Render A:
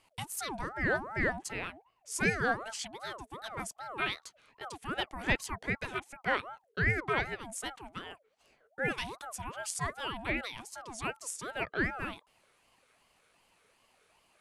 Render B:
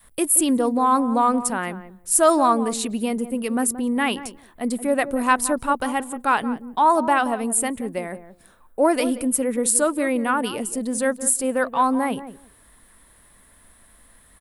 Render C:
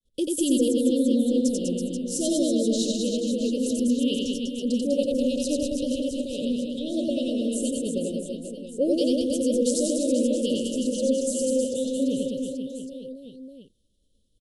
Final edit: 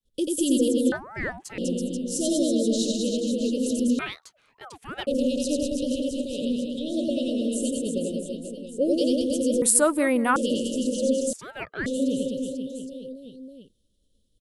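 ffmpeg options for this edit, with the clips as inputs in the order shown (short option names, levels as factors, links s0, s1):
-filter_complex "[0:a]asplit=3[s0][s1][s2];[2:a]asplit=5[s3][s4][s5][s6][s7];[s3]atrim=end=0.922[s8];[s0]atrim=start=0.918:end=1.582[s9];[s4]atrim=start=1.578:end=3.992[s10];[s1]atrim=start=3.988:end=5.072[s11];[s5]atrim=start=5.068:end=9.622[s12];[1:a]atrim=start=9.618:end=10.362[s13];[s6]atrim=start=10.358:end=11.332[s14];[s2]atrim=start=11.328:end=11.862[s15];[s7]atrim=start=11.858[s16];[s8][s9]acrossfade=d=0.004:c1=hsin:c2=hsin[s17];[s17][s10]acrossfade=d=0.004:c1=hsin:c2=hsin[s18];[s18][s11]acrossfade=d=0.004:c1=hsin:c2=hsin[s19];[s19][s12]acrossfade=d=0.004:c1=hsin:c2=hsin[s20];[s20][s13]acrossfade=d=0.004:c1=hsin:c2=hsin[s21];[s21][s14]acrossfade=d=0.004:c1=hsin:c2=hsin[s22];[s22][s15]acrossfade=d=0.004:c1=hsin:c2=hsin[s23];[s23][s16]acrossfade=d=0.004:c1=hsin:c2=hsin"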